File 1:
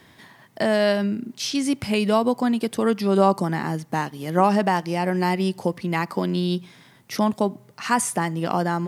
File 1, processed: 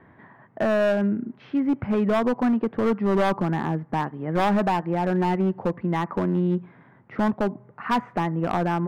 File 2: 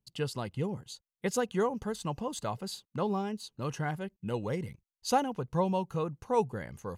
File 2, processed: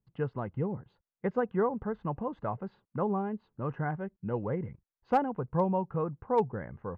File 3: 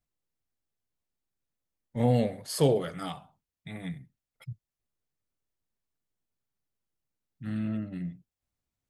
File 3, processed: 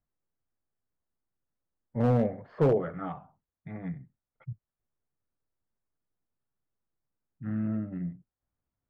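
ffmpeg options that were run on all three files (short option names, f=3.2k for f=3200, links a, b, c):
-af "lowpass=f=1.7k:w=0.5412,lowpass=f=1.7k:w=1.3066,asoftclip=type=hard:threshold=-18dB,volume=1dB"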